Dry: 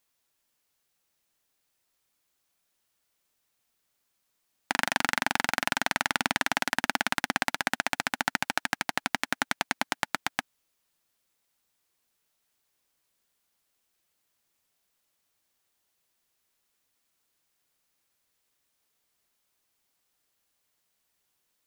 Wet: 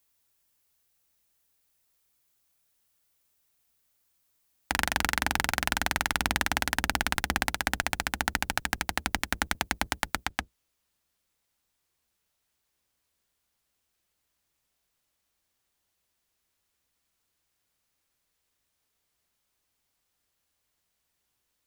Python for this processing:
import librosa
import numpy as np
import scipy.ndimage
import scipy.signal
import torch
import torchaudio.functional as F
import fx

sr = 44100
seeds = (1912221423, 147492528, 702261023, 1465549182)

y = fx.octave_divider(x, sr, octaves=2, level_db=3.0)
y = fx.high_shelf(y, sr, hz=8900.0, db=fx.steps((0.0, 8.0), (10.24, -2.0)))
y = y * librosa.db_to_amplitude(-1.0)